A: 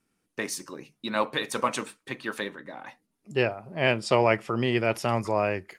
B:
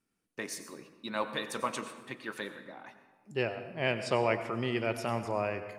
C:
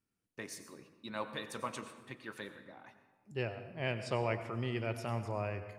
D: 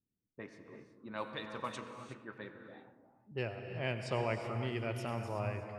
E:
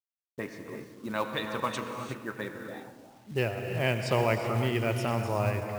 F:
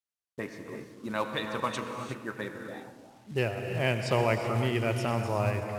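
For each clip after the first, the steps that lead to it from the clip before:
on a send at -10 dB: treble shelf 11 kHz +6.5 dB + reverberation RT60 1.2 s, pre-delay 85 ms; on the sum: trim -7 dB
peaking EQ 92 Hz +12 dB 0.95 oct; trim -6.5 dB
level-controlled noise filter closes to 360 Hz, open at -34.5 dBFS; gated-style reverb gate 390 ms rising, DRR 7.5 dB; trim -1 dB
in parallel at -3 dB: compression 6:1, threshold -46 dBFS, peak gain reduction 16 dB; on the sum: companded quantiser 6-bit; trim +7.5 dB
low-pass 12 kHz 12 dB/octave

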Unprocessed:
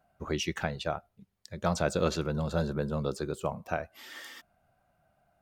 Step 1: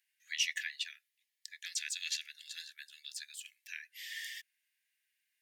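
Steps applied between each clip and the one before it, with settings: Chebyshev high-pass 1.7 kHz, order 8; trim +3.5 dB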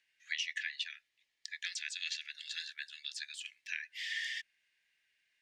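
compression 8:1, threshold -40 dBFS, peak gain reduction 13 dB; distance through air 110 m; trim +8.5 dB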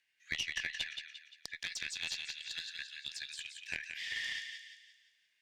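thinning echo 174 ms, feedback 47%, high-pass 1.1 kHz, level -4.5 dB; Chebyshev shaper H 2 -11 dB, 7 -32 dB, 8 -40 dB, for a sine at -20.5 dBFS

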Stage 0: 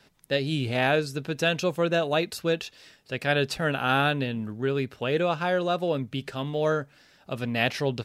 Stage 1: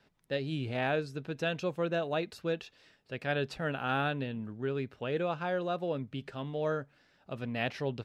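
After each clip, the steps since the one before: low-pass 2.7 kHz 6 dB/octave; trim -7 dB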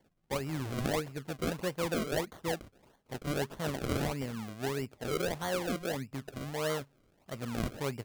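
decimation with a swept rate 34×, swing 100% 1.6 Hz; trim -1 dB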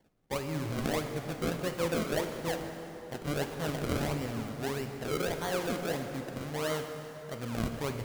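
plate-style reverb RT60 3.8 s, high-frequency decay 0.65×, DRR 4.5 dB

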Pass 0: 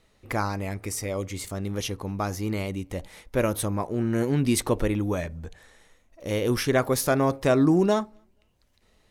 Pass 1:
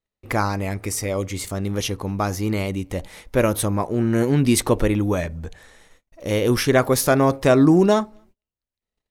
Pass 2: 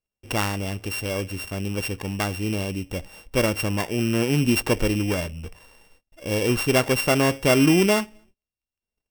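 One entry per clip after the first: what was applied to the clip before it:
gate -57 dBFS, range -31 dB; trim +5.5 dB
sorted samples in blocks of 16 samples; trim -3 dB

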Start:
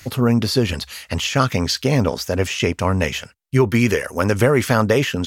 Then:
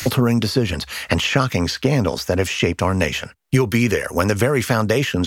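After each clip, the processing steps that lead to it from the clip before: three bands compressed up and down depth 100%; trim -1 dB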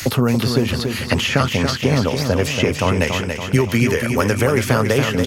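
feedback delay 283 ms, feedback 53%, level -6 dB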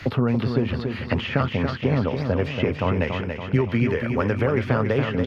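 distance through air 360 m; trim -4 dB

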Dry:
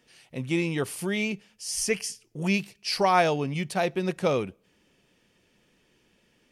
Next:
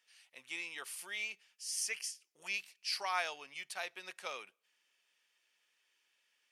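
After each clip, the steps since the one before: high-pass 1.3 kHz 12 dB/octave; trim -7.5 dB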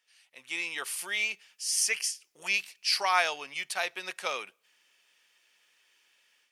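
level rider gain up to 10 dB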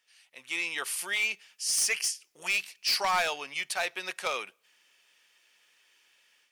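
hard clipper -24 dBFS, distortion -11 dB; trim +2 dB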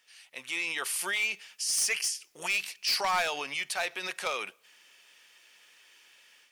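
peak limiter -29.5 dBFS, peak gain reduction 7.5 dB; trim +6.5 dB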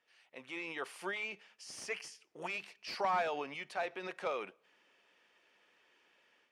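band-pass filter 300 Hz, Q 0.5; trim +1 dB

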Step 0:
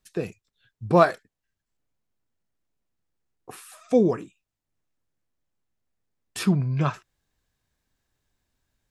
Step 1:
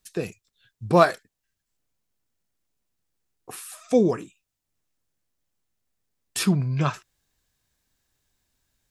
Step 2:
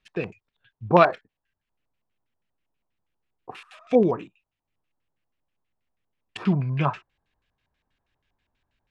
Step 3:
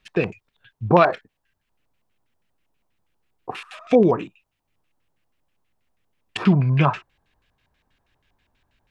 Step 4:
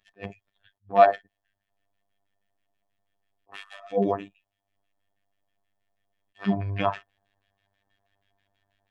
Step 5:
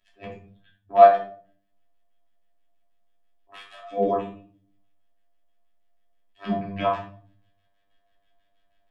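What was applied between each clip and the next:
treble shelf 3.2 kHz +8 dB
LFO low-pass square 6.2 Hz 920–2700 Hz; trim -1 dB
in parallel at +0.5 dB: peak limiter -12.5 dBFS, peak gain reduction 11 dB; on the sum: compression 1.5:1, threshold -18 dBFS, peak gain reduction 4.5 dB; trim +2 dB
small resonant body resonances 670/1800/3300 Hz, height 15 dB, ringing for 60 ms; robot voice 99.4 Hz; attacks held to a fixed rise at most 340 dB/s; trim -6 dB
simulated room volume 450 m³, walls furnished, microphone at 2.9 m; trim -4.5 dB

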